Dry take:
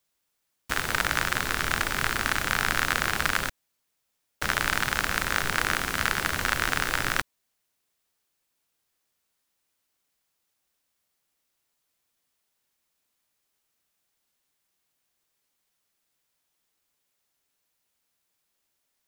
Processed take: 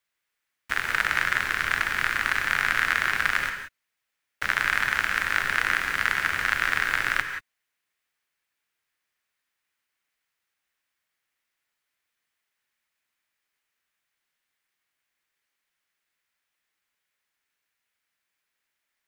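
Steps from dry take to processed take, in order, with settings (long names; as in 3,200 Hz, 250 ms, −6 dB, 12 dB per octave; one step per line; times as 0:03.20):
parametric band 1,900 Hz +13 dB 1.5 octaves
reverb whose tail is shaped and stops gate 200 ms rising, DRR 7 dB
level −8.5 dB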